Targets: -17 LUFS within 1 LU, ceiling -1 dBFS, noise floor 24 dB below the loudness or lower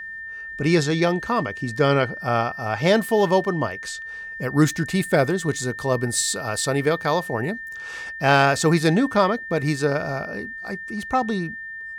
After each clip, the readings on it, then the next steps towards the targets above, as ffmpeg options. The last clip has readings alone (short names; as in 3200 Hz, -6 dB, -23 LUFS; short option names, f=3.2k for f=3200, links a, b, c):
steady tone 1800 Hz; tone level -32 dBFS; loudness -22.0 LUFS; peak -3.5 dBFS; loudness target -17.0 LUFS
-> -af "bandreject=f=1.8k:w=30"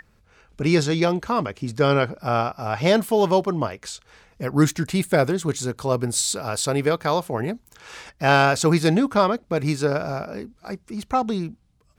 steady tone none; loudness -22.0 LUFS; peak -3.5 dBFS; loudness target -17.0 LUFS
-> -af "volume=5dB,alimiter=limit=-1dB:level=0:latency=1"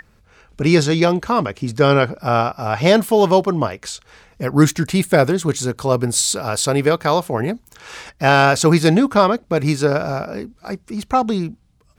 loudness -17.0 LUFS; peak -1.0 dBFS; noise floor -56 dBFS